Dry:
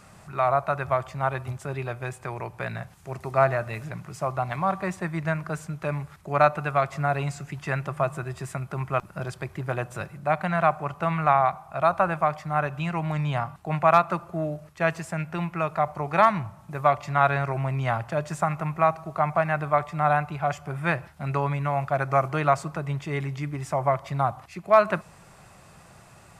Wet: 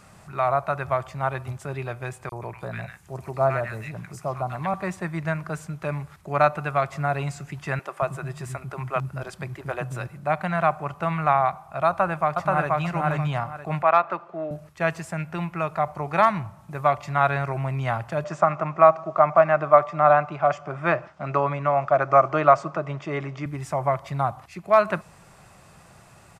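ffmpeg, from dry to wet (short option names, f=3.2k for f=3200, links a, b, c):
-filter_complex "[0:a]asettb=1/sr,asplit=3[a][b][c];[a]atrim=end=2.294[d];[b]atrim=start=2.29:end=4.74,asetpts=PTS-STARTPTS,afade=t=in:d=0.004:c=qsin,afade=t=out:st=2.446:d=0.004:c=qsin,acrossover=split=1300|4100[e][f][g];[e]adelay=30[h];[f]adelay=130[i];[h][i][g]amix=inputs=3:normalize=0,atrim=end_sample=108045[j];[c]atrim=start=4.736[k];[d][j]acrossfade=d=0.004:c1=hsin:c2=qsin[l];[l][k]acrossfade=d=0.004:c1=qsin:c2=hsin,asettb=1/sr,asplit=3[m][n][o];[m]atrim=end=7.794[p];[n]atrim=start=7.79:end=10.07,asetpts=PTS-STARTPTS,afade=t=in:d=0.004:c=qsin,afade=t=out:st=2.276:d=0.004:c=qsin,acrossover=split=280[q][r];[q]adelay=230[s];[s][r]amix=inputs=2:normalize=0,atrim=end_sample=100548[t];[o]atrim=start=10.066[u];[p][t]acrossfade=d=0.004:c1=hsin:c2=qsin[v];[v][u]acrossfade=d=0.004:c1=qsin:c2=hsin,asplit=2[w][x];[x]afade=t=in:st=11.88:d=0.01,afade=t=out:st=12.79:d=0.01,aecho=0:1:480|960|1440|1920:0.891251|0.222813|0.0557032|0.0139258[y];[w][y]amix=inputs=2:normalize=0,asettb=1/sr,asplit=3[z][aa][ab];[z]atrim=end=13.824[ac];[aa]atrim=start=13.82:end=14.51,asetpts=PTS-STARTPTS,afade=t=in:d=0.004:c=qsin,afade=t=out:st=0.686:d=0.004:c=qsin,highpass=330,lowpass=3.2k[ad];[ab]atrim=start=14.506[ae];[ac][ad]acrossfade=d=0.004:c1=hsin:c2=qsin[af];[af][ae]acrossfade=d=0.004:c1=qsin:c2=hsin,asettb=1/sr,asplit=3[ag][ah][ai];[ag]atrim=end=18.244[aj];[ah]atrim=start=18.24:end=23.46,asetpts=PTS-STARTPTS,afade=t=in:d=0.004:c=qsin,afade=t=out:st=5.216:d=0.004:c=qsin,highpass=150,equalizer=f=330:t=q:w=4:g=5,equalizer=f=610:t=q:w=4:g=10,equalizer=f=1.2k:t=q:w=4:g=8,equalizer=f=4.1k:t=q:w=4:g=-5,lowpass=f=6.3k:w=0.5412,lowpass=f=6.3k:w=1.3066[ak];[ai]atrim=start=23.456[al];[aj][ak]acrossfade=d=0.004:c1=hsin:c2=qsin[am];[am][al]acrossfade=d=0.004:c1=qsin:c2=hsin"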